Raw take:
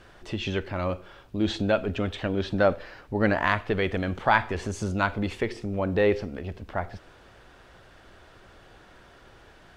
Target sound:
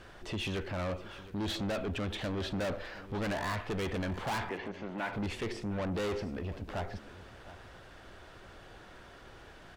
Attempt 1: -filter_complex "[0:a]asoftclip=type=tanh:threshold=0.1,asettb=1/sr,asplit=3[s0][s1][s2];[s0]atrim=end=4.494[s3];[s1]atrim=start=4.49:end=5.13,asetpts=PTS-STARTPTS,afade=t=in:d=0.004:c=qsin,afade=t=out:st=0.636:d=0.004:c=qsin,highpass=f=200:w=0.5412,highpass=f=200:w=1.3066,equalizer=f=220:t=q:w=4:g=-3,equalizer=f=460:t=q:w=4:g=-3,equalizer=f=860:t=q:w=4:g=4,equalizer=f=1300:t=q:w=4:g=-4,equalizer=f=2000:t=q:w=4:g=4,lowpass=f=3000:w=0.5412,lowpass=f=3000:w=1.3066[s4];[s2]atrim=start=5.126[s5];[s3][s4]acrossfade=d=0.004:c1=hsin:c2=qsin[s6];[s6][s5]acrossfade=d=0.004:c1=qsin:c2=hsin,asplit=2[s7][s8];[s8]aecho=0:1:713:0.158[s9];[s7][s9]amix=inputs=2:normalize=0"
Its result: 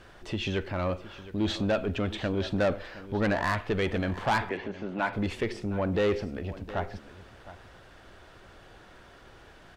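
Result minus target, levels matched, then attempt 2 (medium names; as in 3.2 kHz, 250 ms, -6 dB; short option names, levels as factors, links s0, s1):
saturation: distortion -7 dB
-filter_complex "[0:a]asoftclip=type=tanh:threshold=0.0266,asettb=1/sr,asplit=3[s0][s1][s2];[s0]atrim=end=4.494[s3];[s1]atrim=start=4.49:end=5.13,asetpts=PTS-STARTPTS,afade=t=in:d=0.004:c=qsin,afade=t=out:st=0.636:d=0.004:c=qsin,highpass=f=200:w=0.5412,highpass=f=200:w=1.3066,equalizer=f=220:t=q:w=4:g=-3,equalizer=f=460:t=q:w=4:g=-3,equalizer=f=860:t=q:w=4:g=4,equalizer=f=1300:t=q:w=4:g=-4,equalizer=f=2000:t=q:w=4:g=4,lowpass=f=3000:w=0.5412,lowpass=f=3000:w=1.3066[s4];[s2]atrim=start=5.126[s5];[s3][s4]acrossfade=d=0.004:c1=hsin:c2=qsin[s6];[s6][s5]acrossfade=d=0.004:c1=qsin:c2=hsin,asplit=2[s7][s8];[s8]aecho=0:1:713:0.158[s9];[s7][s9]amix=inputs=2:normalize=0"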